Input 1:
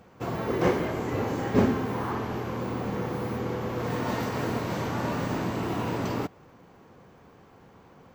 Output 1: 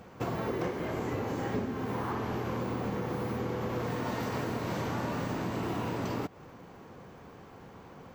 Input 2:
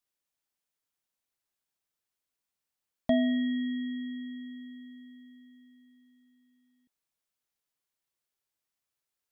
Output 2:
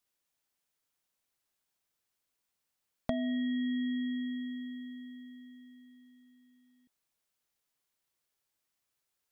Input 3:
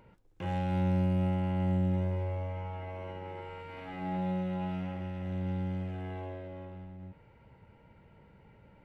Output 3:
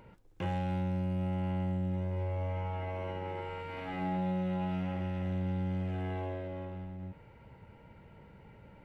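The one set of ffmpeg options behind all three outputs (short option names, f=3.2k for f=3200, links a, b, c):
-af "acompressor=threshold=-33dB:ratio=12,volume=3.5dB"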